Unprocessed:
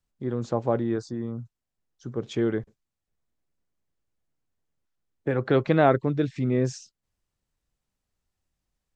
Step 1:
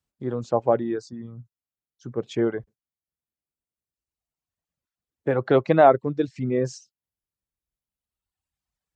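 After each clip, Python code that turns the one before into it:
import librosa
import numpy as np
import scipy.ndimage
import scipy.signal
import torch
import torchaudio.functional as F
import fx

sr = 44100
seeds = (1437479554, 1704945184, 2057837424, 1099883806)

y = fx.dereverb_blind(x, sr, rt60_s=1.9)
y = scipy.signal.sosfilt(scipy.signal.butter(2, 56.0, 'highpass', fs=sr, output='sos'), y)
y = fx.dynamic_eq(y, sr, hz=690.0, q=0.87, threshold_db=-36.0, ratio=4.0, max_db=7)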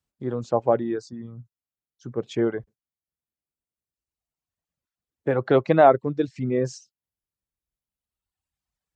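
y = x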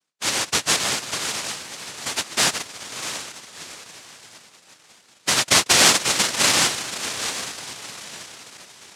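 y = fx.bass_treble(x, sr, bass_db=13, treble_db=11)
y = fx.echo_diffused(y, sr, ms=704, feedback_pct=41, wet_db=-9.0)
y = fx.noise_vocoder(y, sr, seeds[0], bands=1)
y = y * librosa.db_to_amplitude(-2.0)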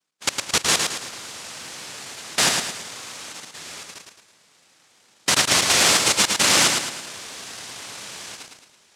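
y = fx.level_steps(x, sr, step_db=21)
y = fx.echo_feedback(y, sr, ms=109, feedback_pct=43, wet_db=-4.5)
y = y * librosa.db_to_amplitude(3.5)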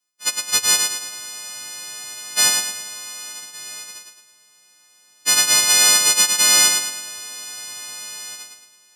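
y = fx.freq_snap(x, sr, grid_st=3)
y = y * librosa.db_to_amplitude(-6.5)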